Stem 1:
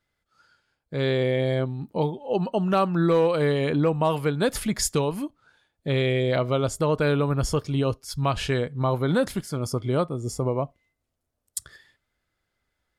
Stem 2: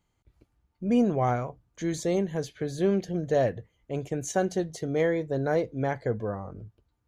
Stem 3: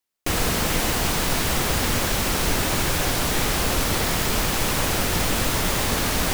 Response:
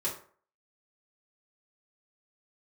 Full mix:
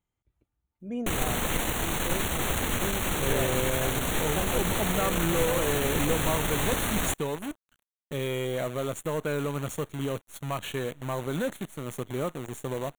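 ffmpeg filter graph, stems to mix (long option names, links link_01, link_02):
-filter_complex "[0:a]highpass=140,asoftclip=type=tanh:threshold=-17dB,acrusher=bits=6:dc=4:mix=0:aa=0.000001,adelay=2250,volume=-5dB[link_01];[1:a]volume=-10.5dB[link_02];[2:a]aeval=exprs='0.355*(cos(1*acos(clip(val(0)/0.355,-1,1)))-cos(1*PI/2))+0.141*(cos(3*acos(clip(val(0)/0.355,-1,1)))-cos(3*PI/2))+0.0224*(cos(4*acos(clip(val(0)/0.355,-1,1)))-cos(4*PI/2))+0.0562*(cos(5*acos(clip(val(0)/0.355,-1,1)))-cos(5*PI/2))':channel_layout=same,adelay=800,volume=0.5dB[link_03];[link_01][link_02][link_03]amix=inputs=3:normalize=0,asuperstop=centerf=5000:order=4:qfactor=2.2"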